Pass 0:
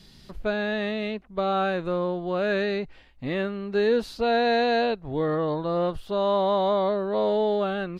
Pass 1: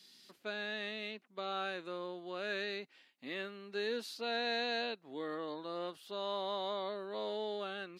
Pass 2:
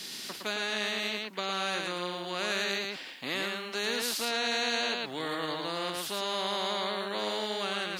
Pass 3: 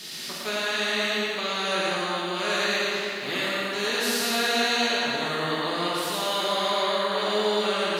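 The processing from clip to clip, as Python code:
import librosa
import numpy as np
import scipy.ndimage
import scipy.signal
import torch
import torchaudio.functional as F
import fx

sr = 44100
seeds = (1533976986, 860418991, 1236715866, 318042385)

y1 = scipy.signal.sosfilt(scipy.signal.butter(4, 270.0, 'highpass', fs=sr, output='sos'), x)
y1 = fx.peak_eq(y1, sr, hz=580.0, db=-13.5, octaves=3.0)
y1 = y1 * 10.0 ** (-3.0 / 20.0)
y2 = y1 + 10.0 ** (-5.0 / 20.0) * np.pad(y1, (int(113 * sr / 1000.0), 0))[:len(y1)]
y2 = fx.spectral_comp(y2, sr, ratio=2.0)
y2 = y2 * 10.0 ** (5.5 / 20.0)
y3 = fx.rev_plate(y2, sr, seeds[0], rt60_s=3.0, hf_ratio=0.65, predelay_ms=0, drr_db=-6.0)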